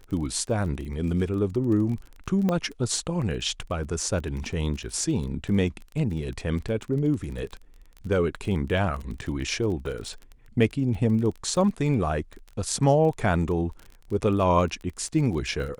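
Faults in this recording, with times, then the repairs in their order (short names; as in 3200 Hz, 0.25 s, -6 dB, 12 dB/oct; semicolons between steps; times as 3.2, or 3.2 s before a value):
crackle 23/s -33 dBFS
2.49 pop -14 dBFS
9.21–9.22 gap 7.1 ms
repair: de-click; interpolate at 9.21, 7.1 ms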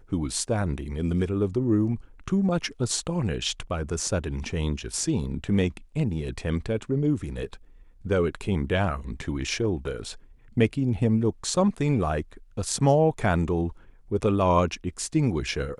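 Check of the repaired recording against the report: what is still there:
2.49 pop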